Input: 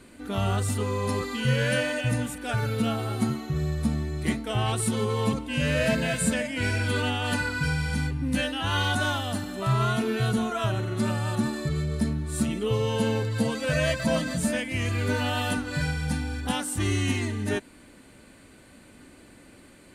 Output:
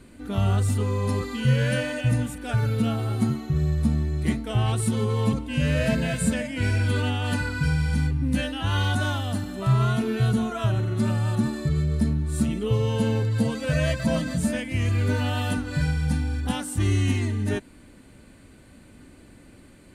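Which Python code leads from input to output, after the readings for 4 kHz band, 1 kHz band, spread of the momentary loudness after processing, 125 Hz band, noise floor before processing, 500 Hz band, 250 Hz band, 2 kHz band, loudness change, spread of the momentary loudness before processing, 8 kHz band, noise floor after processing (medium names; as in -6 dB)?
-2.5 dB, -2.0 dB, 4 LU, +5.0 dB, -52 dBFS, -1.0 dB, +2.0 dB, -2.5 dB, +2.0 dB, 4 LU, -2.5 dB, -50 dBFS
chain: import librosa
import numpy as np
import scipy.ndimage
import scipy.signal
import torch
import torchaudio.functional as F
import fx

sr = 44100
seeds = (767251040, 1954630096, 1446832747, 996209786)

y = fx.low_shelf(x, sr, hz=220.0, db=9.5)
y = y * librosa.db_to_amplitude(-2.5)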